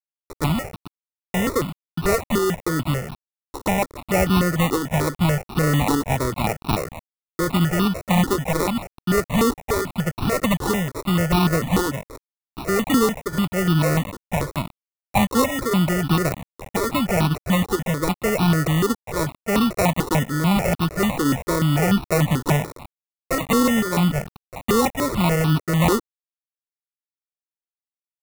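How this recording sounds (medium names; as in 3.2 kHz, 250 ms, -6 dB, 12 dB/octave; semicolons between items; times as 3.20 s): a quantiser's noise floor 6-bit, dither none; tremolo saw up 0.84 Hz, depth 35%; aliases and images of a low sample rate 1.6 kHz, jitter 0%; notches that jump at a steady rate 6.8 Hz 640–2000 Hz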